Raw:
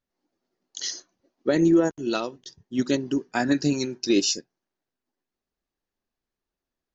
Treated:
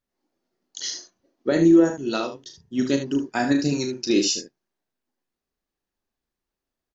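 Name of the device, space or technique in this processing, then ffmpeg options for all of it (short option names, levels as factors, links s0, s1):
slapback doubling: -filter_complex "[0:a]asplit=3[s0][s1][s2];[s1]adelay=36,volume=0.447[s3];[s2]adelay=75,volume=0.355[s4];[s0][s3][s4]amix=inputs=3:normalize=0"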